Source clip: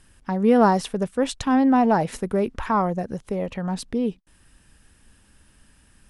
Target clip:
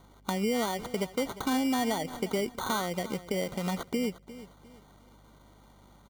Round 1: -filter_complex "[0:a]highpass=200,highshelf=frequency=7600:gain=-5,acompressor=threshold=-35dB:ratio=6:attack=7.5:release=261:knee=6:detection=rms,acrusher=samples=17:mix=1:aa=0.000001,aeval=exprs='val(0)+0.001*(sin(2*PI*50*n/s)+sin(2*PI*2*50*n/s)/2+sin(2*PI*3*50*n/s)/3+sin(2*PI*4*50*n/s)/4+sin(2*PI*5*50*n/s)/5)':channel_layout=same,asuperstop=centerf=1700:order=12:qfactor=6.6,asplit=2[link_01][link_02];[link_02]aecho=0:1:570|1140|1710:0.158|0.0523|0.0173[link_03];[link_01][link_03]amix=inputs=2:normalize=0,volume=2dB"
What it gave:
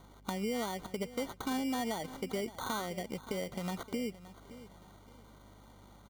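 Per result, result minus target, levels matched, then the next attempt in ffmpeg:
echo 217 ms late; downward compressor: peak gain reduction +6 dB
-filter_complex "[0:a]highpass=200,highshelf=frequency=7600:gain=-5,acompressor=threshold=-35dB:ratio=6:attack=7.5:release=261:knee=6:detection=rms,acrusher=samples=17:mix=1:aa=0.000001,aeval=exprs='val(0)+0.001*(sin(2*PI*50*n/s)+sin(2*PI*2*50*n/s)/2+sin(2*PI*3*50*n/s)/3+sin(2*PI*4*50*n/s)/4+sin(2*PI*5*50*n/s)/5)':channel_layout=same,asuperstop=centerf=1700:order=12:qfactor=6.6,asplit=2[link_01][link_02];[link_02]aecho=0:1:353|706|1059:0.158|0.0523|0.0173[link_03];[link_01][link_03]amix=inputs=2:normalize=0,volume=2dB"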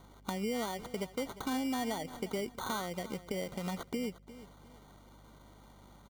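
downward compressor: peak gain reduction +6 dB
-filter_complex "[0:a]highpass=200,highshelf=frequency=7600:gain=-5,acompressor=threshold=-27.5dB:ratio=6:attack=7.5:release=261:knee=6:detection=rms,acrusher=samples=17:mix=1:aa=0.000001,aeval=exprs='val(0)+0.001*(sin(2*PI*50*n/s)+sin(2*PI*2*50*n/s)/2+sin(2*PI*3*50*n/s)/3+sin(2*PI*4*50*n/s)/4+sin(2*PI*5*50*n/s)/5)':channel_layout=same,asuperstop=centerf=1700:order=12:qfactor=6.6,asplit=2[link_01][link_02];[link_02]aecho=0:1:353|706|1059:0.158|0.0523|0.0173[link_03];[link_01][link_03]amix=inputs=2:normalize=0,volume=2dB"

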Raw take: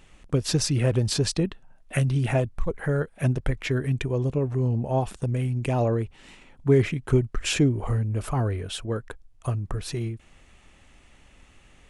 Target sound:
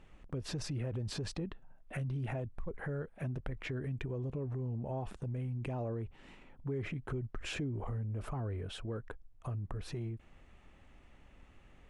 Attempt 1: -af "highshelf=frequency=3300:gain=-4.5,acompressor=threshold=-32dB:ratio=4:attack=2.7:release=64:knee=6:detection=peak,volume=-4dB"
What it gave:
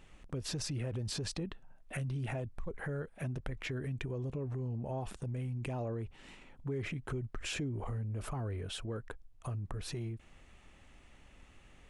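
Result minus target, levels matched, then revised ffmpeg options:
8,000 Hz band +6.0 dB
-af "highshelf=frequency=3300:gain=-15.5,acompressor=threshold=-32dB:ratio=4:attack=2.7:release=64:knee=6:detection=peak,volume=-4dB"

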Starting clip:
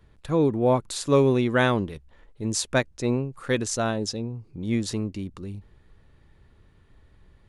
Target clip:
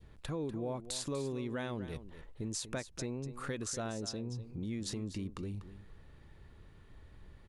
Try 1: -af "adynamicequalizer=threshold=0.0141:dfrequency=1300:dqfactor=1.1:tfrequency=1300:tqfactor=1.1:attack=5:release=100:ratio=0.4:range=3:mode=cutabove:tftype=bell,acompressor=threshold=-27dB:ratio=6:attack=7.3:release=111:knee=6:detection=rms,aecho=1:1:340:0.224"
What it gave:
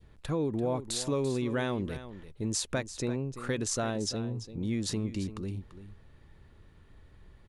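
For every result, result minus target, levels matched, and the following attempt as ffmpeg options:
echo 96 ms late; downward compressor: peak gain reduction −7.5 dB
-af "adynamicequalizer=threshold=0.0141:dfrequency=1300:dqfactor=1.1:tfrequency=1300:tqfactor=1.1:attack=5:release=100:ratio=0.4:range=3:mode=cutabove:tftype=bell,acompressor=threshold=-27dB:ratio=6:attack=7.3:release=111:knee=6:detection=rms,aecho=1:1:244:0.224"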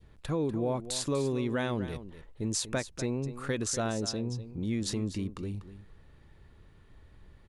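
downward compressor: peak gain reduction −7.5 dB
-af "adynamicequalizer=threshold=0.0141:dfrequency=1300:dqfactor=1.1:tfrequency=1300:tqfactor=1.1:attack=5:release=100:ratio=0.4:range=3:mode=cutabove:tftype=bell,acompressor=threshold=-36dB:ratio=6:attack=7.3:release=111:knee=6:detection=rms,aecho=1:1:244:0.224"

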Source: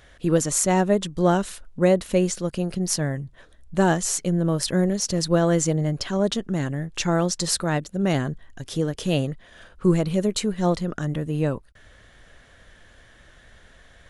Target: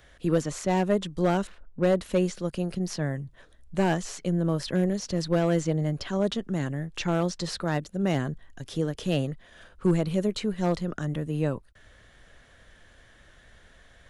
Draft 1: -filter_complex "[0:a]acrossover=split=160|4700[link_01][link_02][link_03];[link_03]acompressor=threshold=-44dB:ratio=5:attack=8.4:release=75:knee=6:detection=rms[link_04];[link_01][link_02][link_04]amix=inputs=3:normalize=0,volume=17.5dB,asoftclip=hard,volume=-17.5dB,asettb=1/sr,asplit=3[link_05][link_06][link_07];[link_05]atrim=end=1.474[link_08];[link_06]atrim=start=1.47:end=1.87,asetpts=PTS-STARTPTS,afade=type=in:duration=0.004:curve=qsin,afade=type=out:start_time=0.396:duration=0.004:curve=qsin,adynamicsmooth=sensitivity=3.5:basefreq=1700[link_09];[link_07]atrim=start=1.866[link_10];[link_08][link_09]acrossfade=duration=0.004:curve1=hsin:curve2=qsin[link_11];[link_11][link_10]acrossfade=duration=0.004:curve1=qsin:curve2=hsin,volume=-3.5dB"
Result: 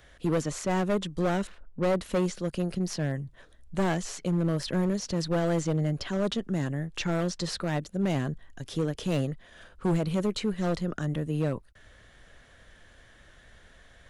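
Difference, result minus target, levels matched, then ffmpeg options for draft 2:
gain into a clipping stage and back: distortion +9 dB
-filter_complex "[0:a]acrossover=split=160|4700[link_01][link_02][link_03];[link_03]acompressor=threshold=-44dB:ratio=5:attack=8.4:release=75:knee=6:detection=rms[link_04];[link_01][link_02][link_04]amix=inputs=3:normalize=0,volume=11.5dB,asoftclip=hard,volume=-11.5dB,asettb=1/sr,asplit=3[link_05][link_06][link_07];[link_05]atrim=end=1.474[link_08];[link_06]atrim=start=1.47:end=1.87,asetpts=PTS-STARTPTS,afade=type=in:duration=0.004:curve=qsin,afade=type=out:start_time=0.396:duration=0.004:curve=qsin,adynamicsmooth=sensitivity=3.5:basefreq=1700[link_09];[link_07]atrim=start=1.866[link_10];[link_08][link_09]acrossfade=duration=0.004:curve1=hsin:curve2=qsin[link_11];[link_11][link_10]acrossfade=duration=0.004:curve1=qsin:curve2=hsin,volume=-3.5dB"

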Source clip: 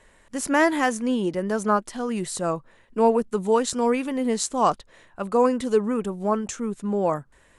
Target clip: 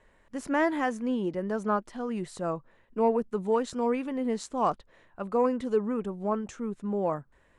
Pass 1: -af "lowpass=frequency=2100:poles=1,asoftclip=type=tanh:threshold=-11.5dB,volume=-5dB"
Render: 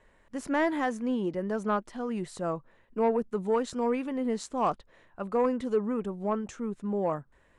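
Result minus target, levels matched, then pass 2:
soft clipping: distortion +11 dB
-af "lowpass=frequency=2100:poles=1,asoftclip=type=tanh:threshold=-5dB,volume=-5dB"

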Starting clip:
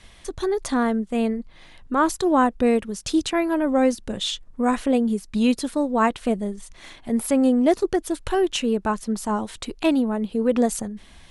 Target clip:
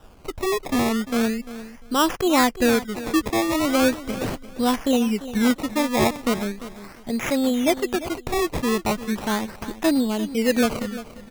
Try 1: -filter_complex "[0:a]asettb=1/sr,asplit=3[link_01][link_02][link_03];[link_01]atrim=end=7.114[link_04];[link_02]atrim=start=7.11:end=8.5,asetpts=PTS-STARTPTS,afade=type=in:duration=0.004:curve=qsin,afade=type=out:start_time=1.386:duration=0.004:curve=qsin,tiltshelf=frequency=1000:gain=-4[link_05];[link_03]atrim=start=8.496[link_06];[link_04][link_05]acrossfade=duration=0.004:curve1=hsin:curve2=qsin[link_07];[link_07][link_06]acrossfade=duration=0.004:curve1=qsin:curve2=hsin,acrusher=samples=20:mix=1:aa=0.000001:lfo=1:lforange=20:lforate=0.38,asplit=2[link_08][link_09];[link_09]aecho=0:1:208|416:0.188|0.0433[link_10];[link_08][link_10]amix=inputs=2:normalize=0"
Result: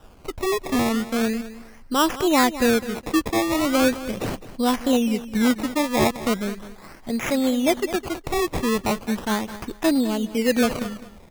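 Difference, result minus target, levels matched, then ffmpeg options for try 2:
echo 139 ms early
-filter_complex "[0:a]asettb=1/sr,asplit=3[link_01][link_02][link_03];[link_01]atrim=end=7.114[link_04];[link_02]atrim=start=7.11:end=8.5,asetpts=PTS-STARTPTS,afade=type=in:duration=0.004:curve=qsin,afade=type=out:start_time=1.386:duration=0.004:curve=qsin,tiltshelf=frequency=1000:gain=-4[link_05];[link_03]atrim=start=8.496[link_06];[link_04][link_05]acrossfade=duration=0.004:curve1=hsin:curve2=qsin[link_07];[link_07][link_06]acrossfade=duration=0.004:curve1=qsin:curve2=hsin,acrusher=samples=20:mix=1:aa=0.000001:lfo=1:lforange=20:lforate=0.38,asplit=2[link_08][link_09];[link_09]aecho=0:1:347|694:0.188|0.0433[link_10];[link_08][link_10]amix=inputs=2:normalize=0"

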